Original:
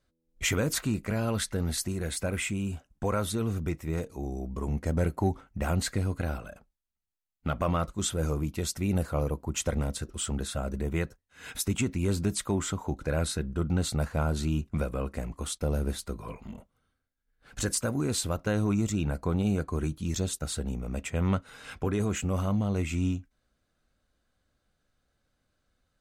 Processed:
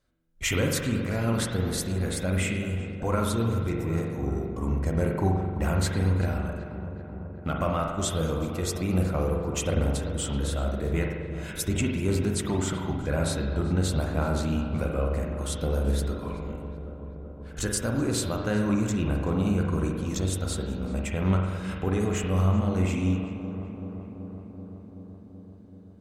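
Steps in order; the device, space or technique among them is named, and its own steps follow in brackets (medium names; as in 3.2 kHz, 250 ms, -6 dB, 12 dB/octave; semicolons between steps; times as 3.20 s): dub delay into a spring reverb (filtered feedback delay 381 ms, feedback 77%, low-pass 1.8 kHz, level -11 dB; spring tank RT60 1.2 s, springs 43 ms, chirp 80 ms, DRR 1 dB)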